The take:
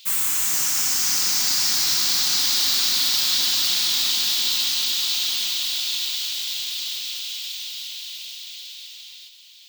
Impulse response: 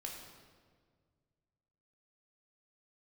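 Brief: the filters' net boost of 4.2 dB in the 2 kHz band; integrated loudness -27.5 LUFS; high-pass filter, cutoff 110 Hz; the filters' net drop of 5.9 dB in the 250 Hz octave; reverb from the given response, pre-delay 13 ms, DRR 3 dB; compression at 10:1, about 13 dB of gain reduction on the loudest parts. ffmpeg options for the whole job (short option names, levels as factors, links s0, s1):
-filter_complex "[0:a]highpass=110,equalizer=f=250:t=o:g=-7.5,equalizer=f=2000:t=o:g=5.5,acompressor=threshold=0.0316:ratio=10,asplit=2[s0][s1];[1:a]atrim=start_sample=2205,adelay=13[s2];[s1][s2]afir=irnorm=-1:irlink=0,volume=0.891[s3];[s0][s3]amix=inputs=2:normalize=0,volume=1.19"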